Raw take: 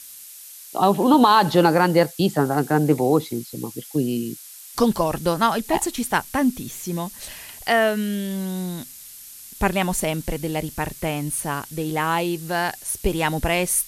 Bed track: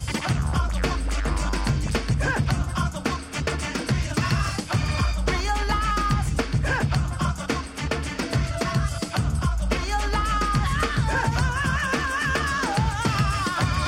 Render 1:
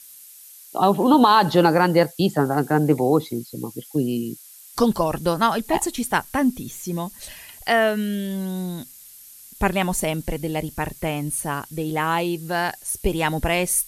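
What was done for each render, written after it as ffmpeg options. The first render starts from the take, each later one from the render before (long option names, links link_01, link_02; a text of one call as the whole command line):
ffmpeg -i in.wav -af "afftdn=noise_reduction=6:noise_floor=-42" out.wav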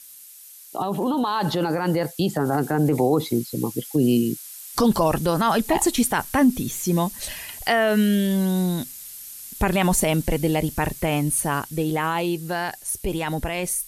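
ffmpeg -i in.wav -af "alimiter=limit=-16dB:level=0:latency=1:release=32,dynaudnorm=framelen=240:gausssize=21:maxgain=6dB" out.wav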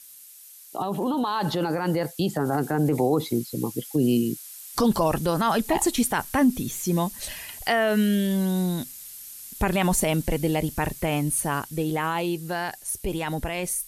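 ffmpeg -i in.wav -af "volume=-2.5dB" out.wav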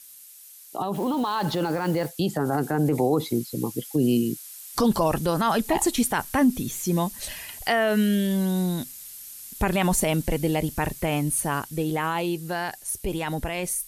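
ffmpeg -i in.wav -filter_complex "[0:a]asettb=1/sr,asplit=3[link_01][link_02][link_03];[link_01]atrim=end=0.954[link_04];[link_02]atrim=start=0.95:end=2.09,asetpts=PTS-STARTPTS,afade=type=in:duration=0.004:curve=qsin,afade=type=out:start_time=1.136:duration=0.004:curve=qsin,acrusher=bits=8:dc=4:mix=0:aa=0.000001[link_05];[link_03]atrim=start=2.086[link_06];[link_04][link_05]acrossfade=duration=0.004:curve1=hsin:curve2=qsin[link_07];[link_07][link_06]acrossfade=duration=0.004:curve1=qsin:curve2=hsin" out.wav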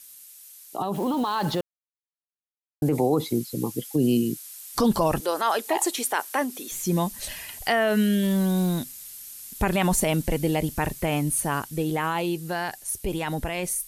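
ffmpeg -i in.wav -filter_complex "[0:a]asettb=1/sr,asplit=3[link_01][link_02][link_03];[link_01]atrim=end=5.204[link_04];[link_02]atrim=start=5.2:end=6.72,asetpts=PTS-STARTPTS,afade=type=in:duration=0.004:curve=qsin,afade=type=out:start_time=1.516:duration=0.004:curve=qsin,highpass=frequency=360:width=0.5412,highpass=frequency=360:width=1.3066[link_05];[link_03]atrim=start=6.716[link_06];[link_04][link_05]acrossfade=duration=0.004:curve1=hsin:curve2=qsin[link_07];[link_07][link_06]acrossfade=duration=0.004:curve1=qsin:curve2=hsin,asettb=1/sr,asplit=3[link_08][link_09][link_10];[link_08]atrim=end=8.234[link_11];[link_09]atrim=start=8.23:end=8.79,asetpts=PTS-STARTPTS,afade=type=in:duration=0.004:curve=qsin,afade=type=out:start_time=0.556:duration=0.004:curve=qsin,aeval=exprs='val(0)+0.5*0.0237*sgn(val(0))':channel_layout=same[link_12];[link_10]atrim=start=8.786[link_13];[link_11][link_12]acrossfade=duration=0.004:curve1=hsin:curve2=qsin[link_14];[link_14][link_13]acrossfade=duration=0.004:curve1=qsin:curve2=hsin,asplit=3[link_15][link_16][link_17];[link_15]atrim=end=1.61,asetpts=PTS-STARTPTS,afade=type=out:start_time=1.606:duration=0.004:curve=hsin[link_18];[link_16]atrim=start=1.61:end=2.82,asetpts=PTS-STARTPTS,volume=0[link_19];[link_17]atrim=start=2.82,asetpts=PTS-STARTPTS,afade=type=in:duration=0.004:curve=hsin[link_20];[link_18][link_19][link_20]concat=n=3:v=0:a=1" out.wav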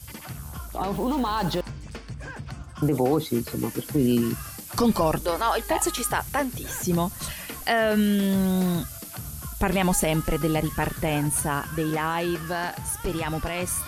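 ffmpeg -i in.wav -i bed.wav -filter_complex "[1:a]volume=-14dB[link_01];[0:a][link_01]amix=inputs=2:normalize=0" out.wav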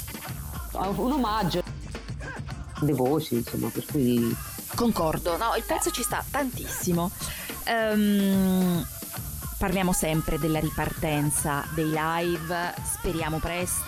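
ffmpeg -i in.wav -af "acompressor=mode=upward:threshold=-30dB:ratio=2.5,alimiter=limit=-15.5dB:level=0:latency=1:release=23" out.wav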